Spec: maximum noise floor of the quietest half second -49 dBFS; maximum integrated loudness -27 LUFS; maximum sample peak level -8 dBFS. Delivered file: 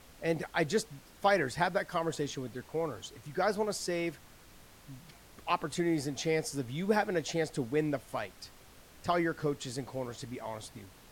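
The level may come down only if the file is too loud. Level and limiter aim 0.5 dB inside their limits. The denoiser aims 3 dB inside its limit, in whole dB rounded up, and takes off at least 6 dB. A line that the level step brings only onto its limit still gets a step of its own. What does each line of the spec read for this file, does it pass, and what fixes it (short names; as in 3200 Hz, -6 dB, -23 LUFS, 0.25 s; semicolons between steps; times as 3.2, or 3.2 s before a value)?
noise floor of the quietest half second -56 dBFS: OK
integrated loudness -33.5 LUFS: OK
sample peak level -15.0 dBFS: OK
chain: none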